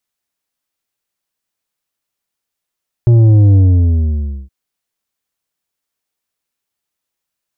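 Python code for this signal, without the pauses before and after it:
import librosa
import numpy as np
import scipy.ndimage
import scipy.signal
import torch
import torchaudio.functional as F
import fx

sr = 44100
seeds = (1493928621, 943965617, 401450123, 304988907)

y = fx.sub_drop(sr, level_db=-5.5, start_hz=120.0, length_s=1.42, drive_db=7.5, fade_s=0.94, end_hz=65.0)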